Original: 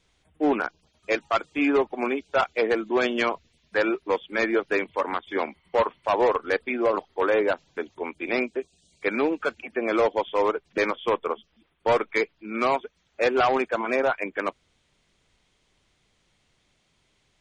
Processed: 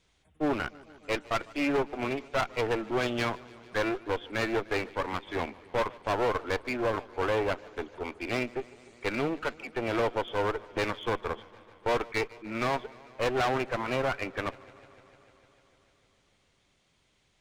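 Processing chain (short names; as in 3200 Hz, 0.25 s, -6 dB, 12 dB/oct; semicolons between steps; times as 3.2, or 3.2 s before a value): one-sided clip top -34.5 dBFS; warbling echo 0.15 s, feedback 78%, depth 91 cents, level -22.5 dB; gain -2 dB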